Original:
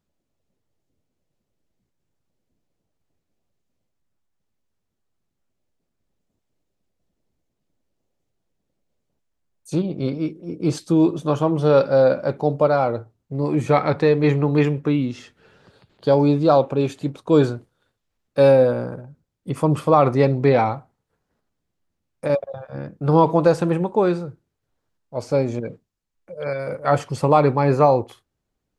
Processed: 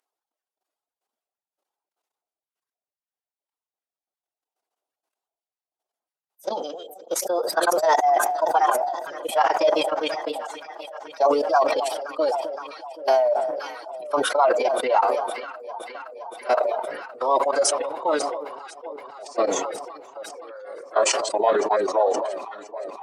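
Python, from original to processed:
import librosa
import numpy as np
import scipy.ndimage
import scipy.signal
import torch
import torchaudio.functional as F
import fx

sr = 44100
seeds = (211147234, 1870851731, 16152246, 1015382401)

y = fx.speed_glide(x, sr, from_pct=161, to_pct=89)
y = fx.level_steps(y, sr, step_db=18)
y = scipy.signal.sosfilt(scipy.signal.butter(4, 530.0, 'highpass', fs=sr, output='sos'), y)
y = fx.notch(y, sr, hz=2200.0, q=17.0)
y = fx.echo_alternate(y, sr, ms=259, hz=1000.0, feedback_pct=84, wet_db=-12.0)
y = fx.dereverb_blind(y, sr, rt60_s=2.0)
y = fx.dynamic_eq(y, sr, hz=2400.0, q=1.2, threshold_db=-41.0, ratio=4.0, max_db=-3)
y = fx.pitch_keep_formants(y, sr, semitones=-4.0)
y = fx.sustainer(y, sr, db_per_s=39.0)
y = F.gain(torch.from_numpy(y), 3.5).numpy()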